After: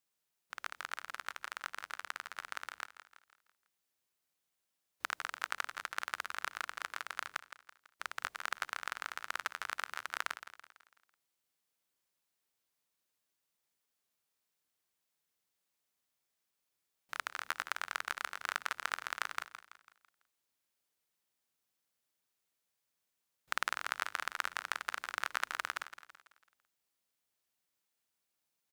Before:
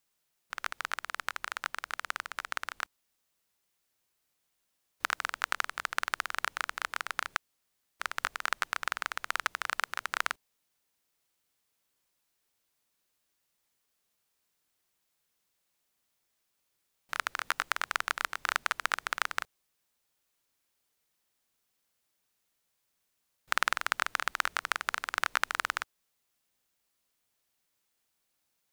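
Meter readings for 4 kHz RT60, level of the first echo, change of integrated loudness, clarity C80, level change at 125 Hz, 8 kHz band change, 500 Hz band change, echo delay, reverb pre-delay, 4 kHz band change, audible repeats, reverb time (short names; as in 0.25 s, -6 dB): none, -12.5 dB, -6.5 dB, none, n/a, -6.0 dB, -6.5 dB, 0.166 s, none, -6.0 dB, 4, none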